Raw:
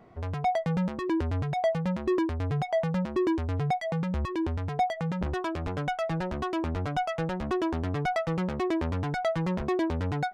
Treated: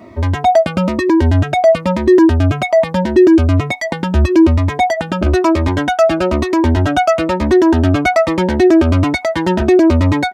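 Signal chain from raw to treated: HPF 62 Hz 24 dB/oct; comb 3.2 ms, depth 90%; maximiser +18 dB; cascading phaser falling 1.1 Hz; gain -1 dB

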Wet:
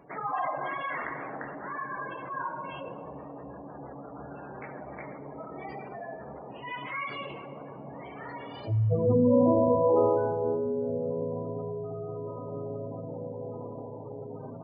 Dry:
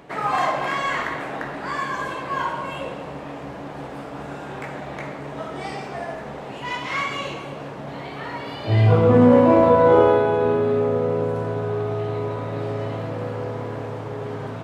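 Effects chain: spectral gate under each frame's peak -15 dB strong; on a send: reverb RT60 3.2 s, pre-delay 4 ms, DRR 12.5 dB; on the sum: gain -8.5 dB

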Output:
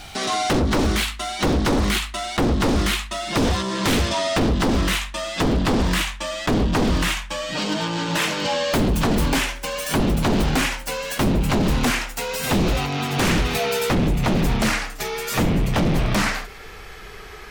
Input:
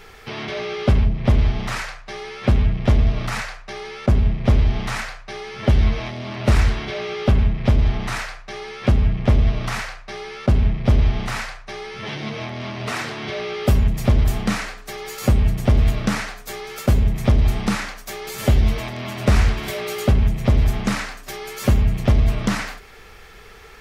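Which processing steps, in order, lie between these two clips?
speed glide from 177% -> 95%; wavefolder -18.5 dBFS; gain +5 dB

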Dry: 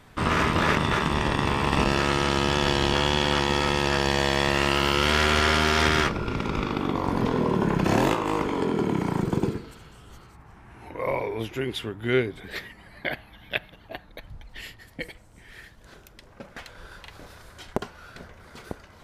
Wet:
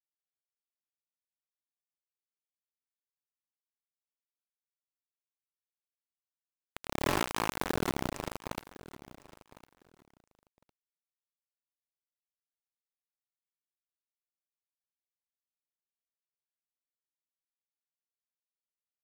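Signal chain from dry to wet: Wiener smoothing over 15 samples; Doppler pass-by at 7.6, 39 m/s, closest 17 m; thin delay 0.156 s, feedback 79%, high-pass 5000 Hz, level -4 dB; sample gate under -20.5 dBFS; on a send: feedback echo 1.056 s, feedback 18%, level -18 dB; on the sum: gain -1.5 dB

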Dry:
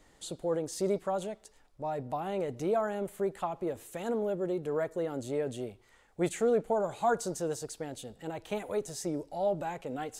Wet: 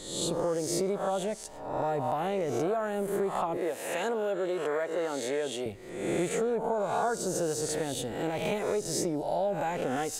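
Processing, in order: spectral swells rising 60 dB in 0.80 s; 3.57–5.66 weighting filter A; compressor 6:1, threshold -34 dBFS, peak gain reduction 13 dB; gain +7.5 dB

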